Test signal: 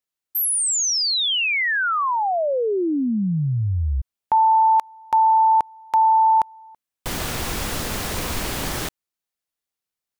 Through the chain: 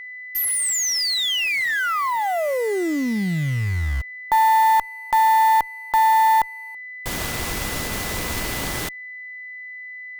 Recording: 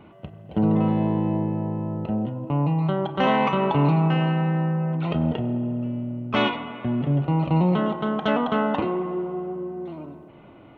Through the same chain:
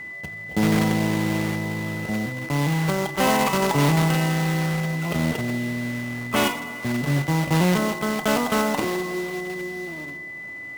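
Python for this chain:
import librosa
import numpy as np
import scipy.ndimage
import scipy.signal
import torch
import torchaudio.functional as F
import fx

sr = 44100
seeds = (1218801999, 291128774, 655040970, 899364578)

y = fx.block_float(x, sr, bits=3)
y = y + 10.0 ** (-32.0 / 20.0) * np.sin(2.0 * np.pi * 2000.0 * np.arange(len(y)) / sr)
y = fx.cheby_harmonics(y, sr, harmonics=(4, 6, 7), levels_db=(-25, -37, -33), full_scale_db=-7.5)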